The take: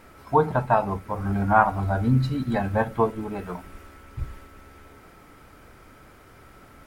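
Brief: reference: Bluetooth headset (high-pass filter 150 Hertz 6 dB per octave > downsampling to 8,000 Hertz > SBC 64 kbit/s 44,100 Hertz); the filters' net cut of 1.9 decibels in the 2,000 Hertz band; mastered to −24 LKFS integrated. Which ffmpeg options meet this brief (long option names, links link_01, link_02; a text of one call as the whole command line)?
ffmpeg -i in.wav -af "highpass=frequency=150:poles=1,equalizer=frequency=2000:width_type=o:gain=-3,aresample=8000,aresample=44100,volume=1dB" -ar 44100 -c:a sbc -b:a 64k out.sbc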